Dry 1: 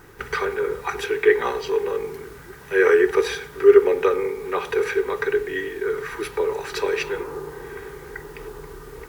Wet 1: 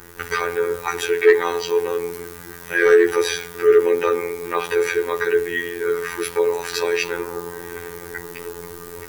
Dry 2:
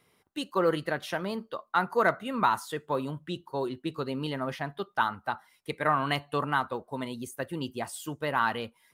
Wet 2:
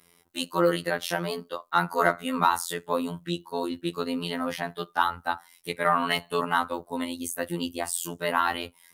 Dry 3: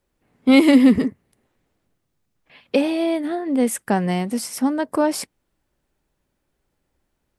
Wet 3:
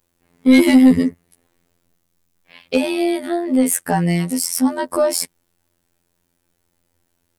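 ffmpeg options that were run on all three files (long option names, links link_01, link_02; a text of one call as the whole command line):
ffmpeg -i in.wav -af "highshelf=frequency=4900:gain=10.5,afftfilt=real='hypot(re,im)*cos(PI*b)':imag='0':win_size=2048:overlap=0.75,acontrast=81,volume=-1dB" out.wav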